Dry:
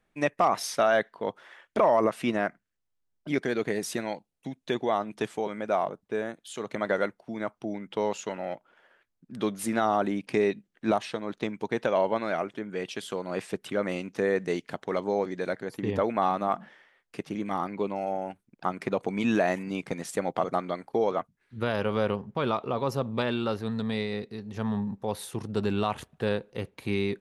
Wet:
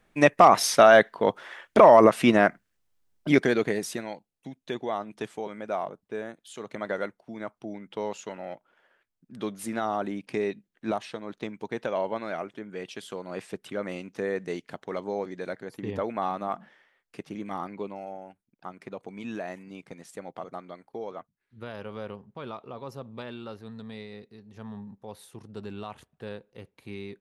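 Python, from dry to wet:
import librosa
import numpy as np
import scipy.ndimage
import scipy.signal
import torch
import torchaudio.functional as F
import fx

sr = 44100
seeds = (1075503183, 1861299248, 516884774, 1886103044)

y = fx.gain(x, sr, db=fx.line((3.33, 8.0), (4.09, -4.0), (17.71, -4.0), (18.3, -11.0)))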